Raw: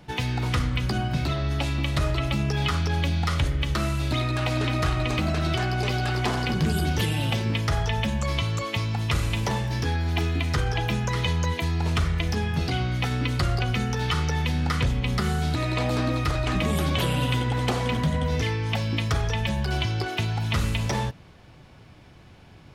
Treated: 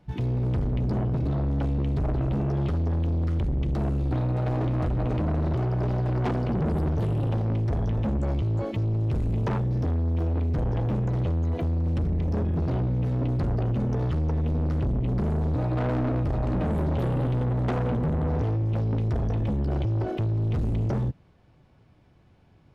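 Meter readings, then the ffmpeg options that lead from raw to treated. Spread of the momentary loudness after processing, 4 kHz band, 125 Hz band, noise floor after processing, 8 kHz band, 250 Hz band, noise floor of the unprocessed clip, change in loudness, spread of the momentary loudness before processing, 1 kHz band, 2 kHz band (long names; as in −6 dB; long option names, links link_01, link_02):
1 LU, below −20 dB, +0.5 dB, −57 dBFS, below −20 dB, +0.5 dB, −49 dBFS, −1.0 dB, 2 LU, −6.5 dB, −15.0 dB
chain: -af "tiltshelf=frequency=1400:gain=4.5,afwtdn=0.0891,asoftclip=type=tanh:threshold=-27dB,volume=4dB"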